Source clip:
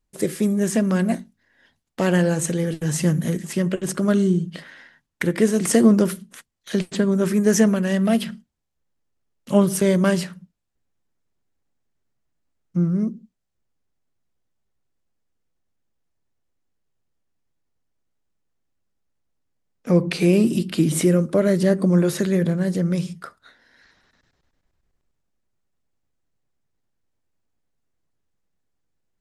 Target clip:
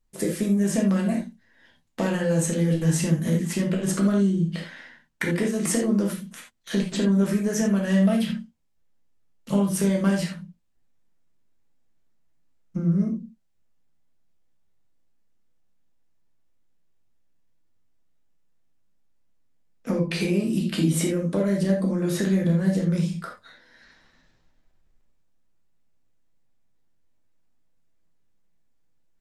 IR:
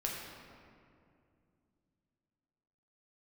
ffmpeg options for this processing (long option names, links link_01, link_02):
-filter_complex "[0:a]acompressor=threshold=-22dB:ratio=6[link_01];[1:a]atrim=start_sample=2205,atrim=end_sample=6174,asetrate=66150,aresample=44100[link_02];[link_01][link_02]afir=irnorm=-1:irlink=0,volume=3.5dB"